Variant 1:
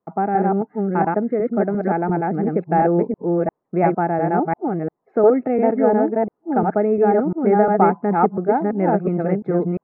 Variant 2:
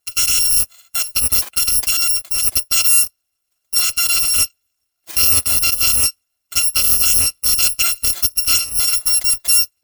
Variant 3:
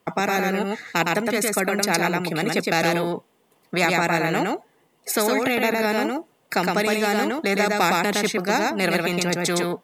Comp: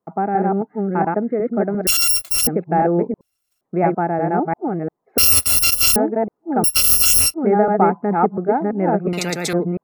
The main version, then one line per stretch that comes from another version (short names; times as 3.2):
1
1.87–2.47 from 2
3.21–3.61 from 2
5.18–5.96 from 2
6.64–7.34 from 2
9.13–9.53 from 3